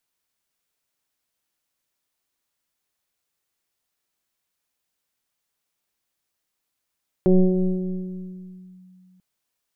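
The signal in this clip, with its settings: FM tone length 1.94 s, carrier 184 Hz, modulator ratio 1.01, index 1.3, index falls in 1.56 s linear, decay 2.68 s, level -10 dB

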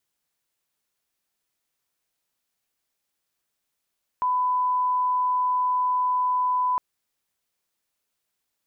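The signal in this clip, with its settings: line-up tone -20 dBFS 2.56 s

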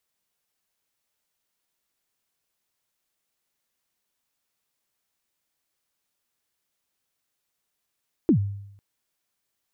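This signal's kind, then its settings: kick drum length 0.50 s, from 370 Hz, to 100 Hz, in 92 ms, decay 0.78 s, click off, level -12.5 dB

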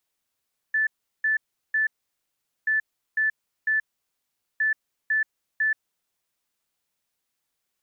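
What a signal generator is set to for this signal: beep pattern sine 1.75 kHz, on 0.13 s, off 0.37 s, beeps 3, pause 0.80 s, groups 3, -19.5 dBFS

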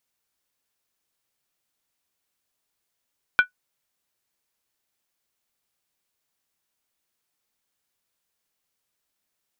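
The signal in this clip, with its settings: skin hit, lowest mode 1.48 kHz, decay 0.11 s, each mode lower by 9 dB, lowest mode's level -8 dB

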